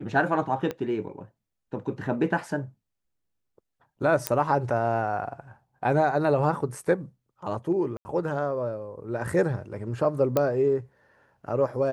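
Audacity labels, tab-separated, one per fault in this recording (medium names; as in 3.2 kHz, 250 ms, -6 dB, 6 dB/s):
0.710000	0.710000	pop -18 dBFS
4.270000	4.270000	pop -6 dBFS
7.970000	8.050000	dropout 80 ms
10.370000	10.370000	pop -10 dBFS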